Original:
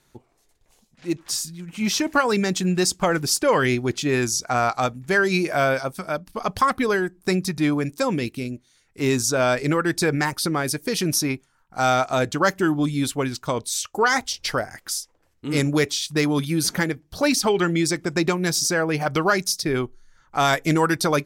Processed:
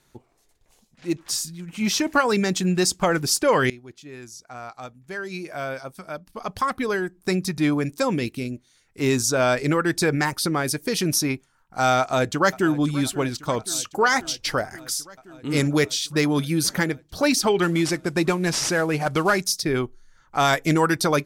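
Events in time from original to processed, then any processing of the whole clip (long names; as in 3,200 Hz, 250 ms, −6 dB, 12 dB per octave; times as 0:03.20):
0:03.70–0:07.67: fade in quadratic, from −19.5 dB
0:11.99–0:12.76: delay throw 530 ms, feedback 80%, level −18 dB
0:17.62–0:19.42: variable-slope delta modulation 64 kbit/s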